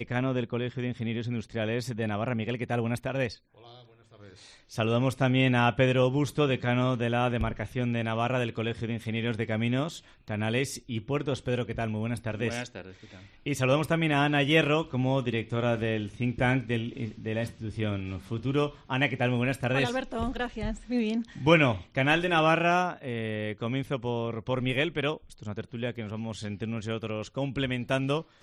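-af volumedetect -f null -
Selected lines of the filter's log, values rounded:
mean_volume: -28.7 dB
max_volume: -6.3 dB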